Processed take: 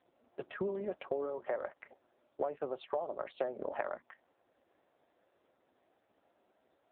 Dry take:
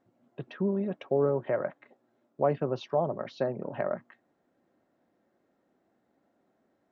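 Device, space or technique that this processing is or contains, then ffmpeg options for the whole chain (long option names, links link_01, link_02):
voicemail: -af "highpass=440,lowpass=3000,acompressor=threshold=-37dB:ratio=8,volume=5.5dB" -ar 8000 -c:a libopencore_amrnb -b:a 5900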